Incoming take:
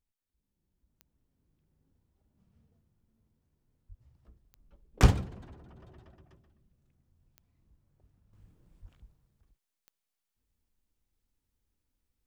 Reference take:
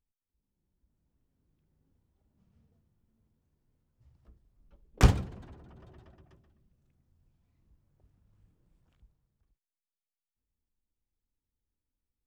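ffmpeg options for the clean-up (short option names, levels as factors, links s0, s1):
-filter_complex "[0:a]adeclick=t=4,asplit=3[s0][s1][s2];[s0]afade=t=out:st=3.88:d=0.02[s3];[s1]highpass=f=140:w=0.5412,highpass=f=140:w=1.3066,afade=t=in:st=3.88:d=0.02,afade=t=out:st=4:d=0.02[s4];[s2]afade=t=in:st=4:d=0.02[s5];[s3][s4][s5]amix=inputs=3:normalize=0,asplit=3[s6][s7][s8];[s6]afade=t=out:st=8.81:d=0.02[s9];[s7]highpass=f=140:w=0.5412,highpass=f=140:w=1.3066,afade=t=in:st=8.81:d=0.02,afade=t=out:st=8.93:d=0.02[s10];[s8]afade=t=in:st=8.93:d=0.02[s11];[s9][s10][s11]amix=inputs=3:normalize=0,asetnsamples=n=441:p=0,asendcmd='8.33 volume volume -6.5dB',volume=1"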